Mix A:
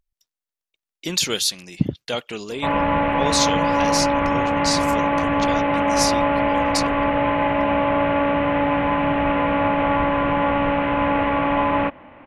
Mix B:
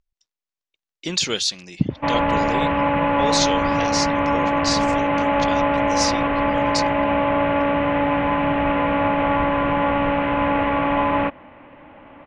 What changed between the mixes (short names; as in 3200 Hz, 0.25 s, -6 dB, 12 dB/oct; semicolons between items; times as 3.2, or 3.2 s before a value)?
speech: add LPF 7100 Hz 24 dB/oct; background: entry -0.60 s